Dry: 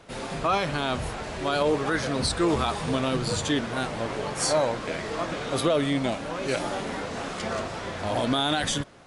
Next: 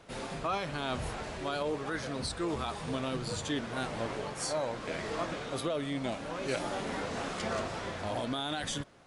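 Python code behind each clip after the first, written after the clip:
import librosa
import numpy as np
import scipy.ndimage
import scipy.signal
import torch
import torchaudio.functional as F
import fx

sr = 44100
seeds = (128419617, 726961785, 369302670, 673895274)

y = fx.rider(x, sr, range_db=5, speed_s=0.5)
y = y * 10.0 ** (-8.0 / 20.0)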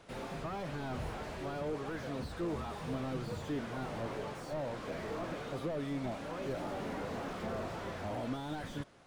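y = fx.slew_limit(x, sr, full_power_hz=13.0)
y = y * 10.0 ** (-2.0 / 20.0)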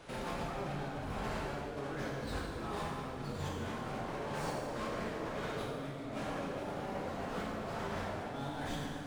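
y = fx.over_compress(x, sr, threshold_db=-44.0, ratio=-1.0)
y = fx.rev_plate(y, sr, seeds[0], rt60_s=2.2, hf_ratio=0.75, predelay_ms=0, drr_db=-4.5)
y = y * 10.0 ** (-1.5 / 20.0)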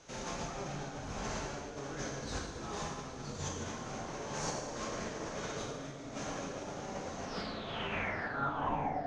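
y = fx.filter_sweep_lowpass(x, sr, from_hz=6300.0, to_hz=700.0, start_s=7.21, end_s=9.0, q=7.6)
y = fx.echo_feedback(y, sr, ms=820, feedback_pct=37, wet_db=-15.0)
y = fx.upward_expand(y, sr, threshold_db=-47.0, expansion=1.5)
y = y * 10.0 ** (1.0 / 20.0)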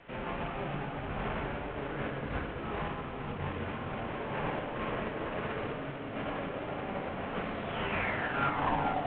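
y = fx.cvsd(x, sr, bps=16000)
y = fx.air_absorb(y, sr, metres=71.0)
y = y + 10.0 ** (-8.5 / 20.0) * np.pad(y, (int(441 * sr / 1000.0), 0))[:len(y)]
y = y * 10.0 ** (4.5 / 20.0)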